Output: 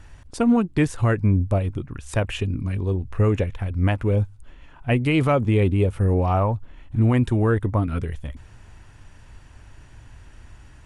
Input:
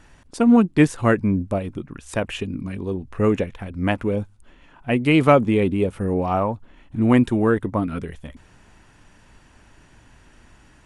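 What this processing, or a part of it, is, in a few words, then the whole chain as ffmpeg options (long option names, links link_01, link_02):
car stereo with a boomy subwoofer: -af "lowshelf=frequency=140:width_type=q:width=1.5:gain=7.5,alimiter=limit=-10dB:level=0:latency=1:release=199"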